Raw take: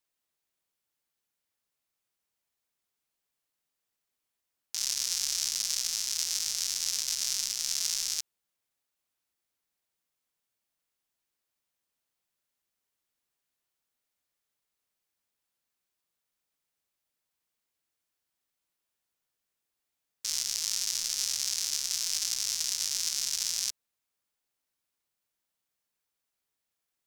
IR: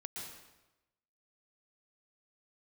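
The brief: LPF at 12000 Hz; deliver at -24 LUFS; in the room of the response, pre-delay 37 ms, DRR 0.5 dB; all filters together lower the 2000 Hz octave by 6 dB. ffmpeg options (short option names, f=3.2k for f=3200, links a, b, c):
-filter_complex "[0:a]lowpass=12k,equalizer=f=2k:t=o:g=-8,asplit=2[a][b];[1:a]atrim=start_sample=2205,adelay=37[c];[b][c]afir=irnorm=-1:irlink=0,volume=1dB[d];[a][d]amix=inputs=2:normalize=0,volume=3.5dB"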